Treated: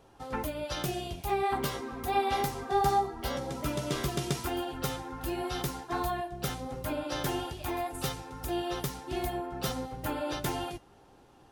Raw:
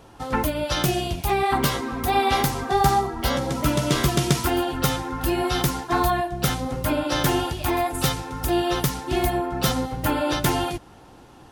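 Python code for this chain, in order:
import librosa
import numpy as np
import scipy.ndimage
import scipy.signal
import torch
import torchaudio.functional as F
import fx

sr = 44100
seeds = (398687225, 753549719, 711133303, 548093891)

y = fx.peak_eq(x, sr, hz=540.0, db=3.0, octaves=0.91)
y = fx.comb_fb(y, sr, f0_hz=400.0, decay_s=0.19, harmonics='all', damping=0.0, mix_pct=60)
y = y * librosa.db_to_amplitude(-4.5)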